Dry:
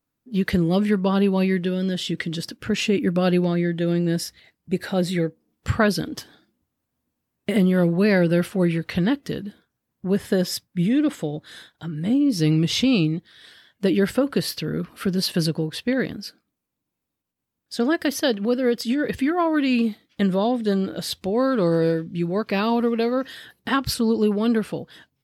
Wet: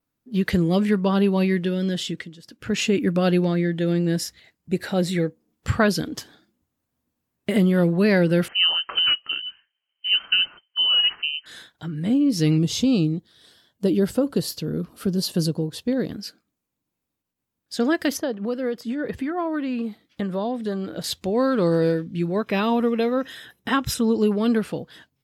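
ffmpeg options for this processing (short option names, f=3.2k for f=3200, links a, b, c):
-filter_complex "[0:a]asettb=1/sr,asplit=3[a][b][c];[a]atrim=end=8.484[d];[b]atrim=start=8.48:end=11.46,asetpts=PTS-STARTPTS,afade=t=in:d=0.004:c=qsin,afade=t=out:st=2.976:d=0.004:c=qsin,lowpass=f=2.7k:t=q:w=0.5098,lowpass=f=2.7k:t=q:w=0.6013,lowpass=f=2.7k:t=q:w=0.9,lowpass=f=2.7k:t=q:w=2.563,afreqshift=-3200[e];[c]atrim=start=11.456[f];[d][e]acrossfade=d=0.004:c1=hsin:c2=qsin[g];[g][f]acrossfade=d=0.004:c1=qsin:c2=hsin,asettb=1/sr,asplit=3[h][i][j];[h]atrim=end=12.584[k];[i]atrim=start=12.58:end=16.1,asetpts=PTS-STARTPTS,afade=t=in:d=0.004:c=qsin,afade=t=out:st=3.516:d=0.004:c=qsin,equalizer=f=2k:t=o:w=1.4:g=-12.5[l];[j]atrim=start=16.096[m];[k][l]acrossfade=d=0.004:c1=hsin:c2=qsin[n];[n][m]acrossfade=d=0.004:c1=qsin:c2=hsin,asettb=1/sr,asplit=3[o][p][q];[o]atrim=end=18.174[r];[p]atrim=start=18.17:end=21.04,asetpts=PTS-STARTPTS,afade=t=in:d=0.004:c=qsin,afade=t=out:st=2.866:d=0.004:c=qsin,acrossover=split=640|1400[s][t][u];[s]acompressor=threshold=-26dB:ratio=4[v];[t]acompressor=threshold=-30dB:ratio=4[w];[u]acompressor=threshold=-46dB:ratio=4[x];[v][w][x]amix=inputs=3:normalize=0[y];[q]atrim=start=21.036[z];[r][y]acrossfade=d=0.004:c1=hsin:c2=qsin[aa];[aa][z]acrossfade=d=0.004:c1=qsin:c2=hsin,asettb=1/sr,asplit=3[ab][ac][ad];[ab]atrim=end=22.364[ae];[ac]atrim=start=22.36:end=24.16,asetpts=PTS-STARTPTS,afade=t=in:d=0.004:c=qsin,afade=t=out:st=1.796:d=0.004:c=qsin,asuperstop=centerf=4500:order=12:qfactor=6.8[af];[ad]atrim=start=24.156[ag];[ae][af]acrossfade=d=0.004:c1=hsin:c2=qsin[ah];[ah][ag]acrossfade=d=0.004:c1=qsin:c2=hsin,asplit=3[ai][aj][ak];[ai]atrim=end=2.34,asetpts=PTS-STARTPTS,afade=t=out:st=2:d=0.34:silence=0.133352[al];[aj]atrim=start=2.34:end=2.43,asetpts=PTS-STARTPTS,volume=-17.5dB[am];[ak]atrim=start=2.43,asetpts=PTS-STARTPTS,afade=t=in:d=0.34:silence=0.133352[an];[al][am][an]concat=n=3:v=0:a=1,adynamicequalizer=threshold=0.00178:dfrequency=6900:dqfactor=5.5:tfrequency=6900:tqfactor=5.5:attack=5:release=100:ratio=0.375:range=3:mode=boostabove:tftype=bell"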